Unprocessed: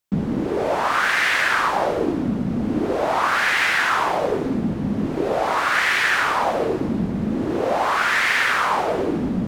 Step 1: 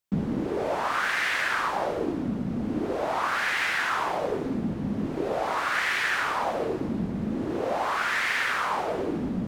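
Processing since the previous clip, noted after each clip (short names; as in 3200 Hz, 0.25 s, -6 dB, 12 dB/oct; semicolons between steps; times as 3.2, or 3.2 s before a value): vocal rider 2 s; gain -7.5 dB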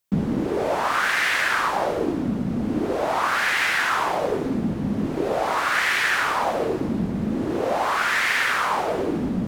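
high shelf 7400 Hz +5 dB; gain +4.5 dB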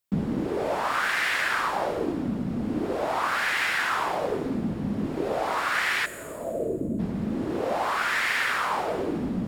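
spectral gain 6.06–6.99, 700–6600 Hz -19 dB; notch 6100 Hz, Q 16; on a send at -21 dB: reverb RT60 1.5 s, pre-delay 40 ms; on the sum: gain -4 dB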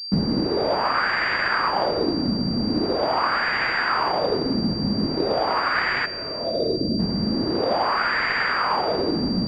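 pulse-width modulation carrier 4700 Hz; gain +5 dB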